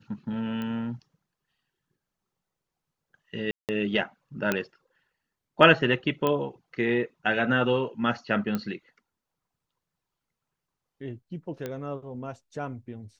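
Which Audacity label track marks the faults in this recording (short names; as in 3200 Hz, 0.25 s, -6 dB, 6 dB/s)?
0.620000	0.620000	pop -22 dBFS
3.510000	3.690000	gap 0.178 s
4.520000	4.520000	pop -10 dBFS
6.270000	6.270000	pop -13 dBFS
8.550000	8.550000	pop -16 dBFS
11.660000	11.660000	pop -19 dBFS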